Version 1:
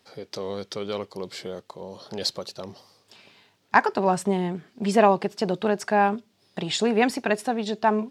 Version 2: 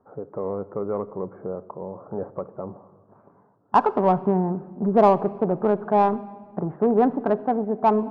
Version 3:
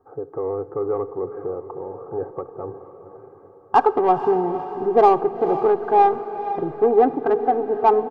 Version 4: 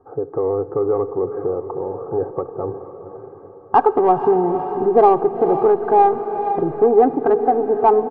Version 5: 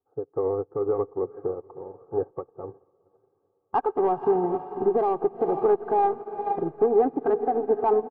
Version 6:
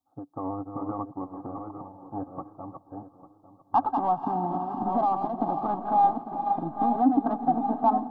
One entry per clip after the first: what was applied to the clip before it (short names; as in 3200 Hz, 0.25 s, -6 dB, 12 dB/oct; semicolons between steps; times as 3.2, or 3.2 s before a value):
steep low-pass 1300 Hz 48 dB/oct; in parallel at -5 dB: soft clip -20.5 dBFS, distortion -9 dB; on the sum: shoebox room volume 2300 m³, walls mixed, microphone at 0.34 m
comb 2.5 ms, depth 87%; on a send: diffused feedback echo 0.491 s, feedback 50%, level -11.5 dB
LPF 1200 Hz 6 dB/oct; in parallel at +1 dB: compressor, threshold -25 dBFS, peak gain reduction 14 dB; on the sum: gain +1 dB
limiter -11.5 dBFS, peak gain reduction 10 dB; upward expander 2.5:1, over -36 dBFS
reverse delay 0.644 s, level -6 dB; EQ curve 130 Hz 0 dB, 290 Hz +10 dB, 420 Hz -25 dB, 600 Hz +3 dB, 1100 Hz +5 dB, 1700 Hz -7 dB, 2400 Hz -7 dB, 3600 Hz +8 dB, 5400 Hz +6 dB; darkening echo 0.848 s, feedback 43%, low-pass 1500 Hz, level -14.5 dB; gain -2 dB